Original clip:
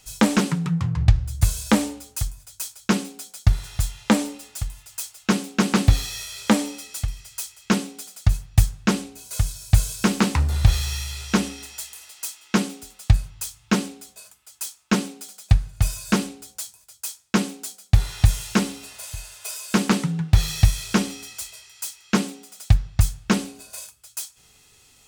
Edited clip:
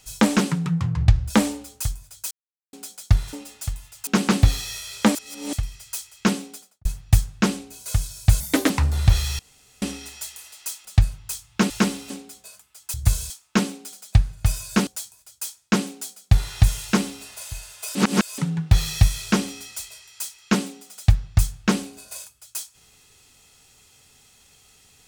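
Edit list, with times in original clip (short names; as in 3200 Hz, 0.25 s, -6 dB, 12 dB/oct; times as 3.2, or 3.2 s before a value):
1.3–1.66 move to 14.66
2.67–3.09 mute
3.69–4.27 cut
5.01–5.52 cut
6.6–6.98 reverse
7.92–8.3 studio fade out
9.85–10.27 speed 140%
10.96–11.39 room tone
12.42–12.97 cut
16.23–16.49 cut
18.45–18.85 copy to 13.82
19.57–20 reverse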